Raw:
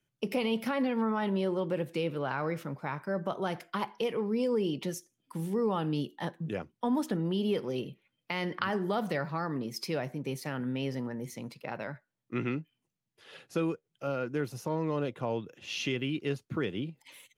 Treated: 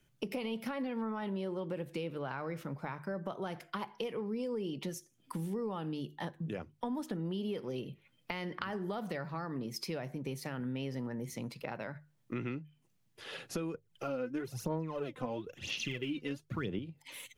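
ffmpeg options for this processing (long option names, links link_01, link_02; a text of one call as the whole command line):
ffmpeg -i in.wav -filter_complex "[0:a]asettb=1/sr,asplit=3[link_01][link_02][link_03];[link_01]atrim=end=13.744[link_04];[link_02]atrim=start=13.74:end=16.79,asetpts=PTS-STARTPTS,afade=type=in:duration=0.004:curve=qsin,afade=type=out:start_time=3.046:duration=0.004:curve=qsin,aphaser=in_gain=1:out_gain=1:delay=4:decay=0.66:speed=1:type=sinusoidal[link_05];[link_03]atrim=start=16.786[link_06];[link_04][link_05]acrossfade=duration=0.004:curve1=hsin:curve2=qsin[link_07];[link_07][link_06]acrossfade=duration=0.004:curve1=qsin:curve2=hsin,acompressor=threshold=-49dB:ratio=3,lowshelf=frequency=64:gain=11.5,bandreject=frequency=50:width_type=h:width=6,bandreject=frequency=100:width_type=h:width=6,bandreject=frequency=150:width_type=h:width=6,volume=8dB" out.wav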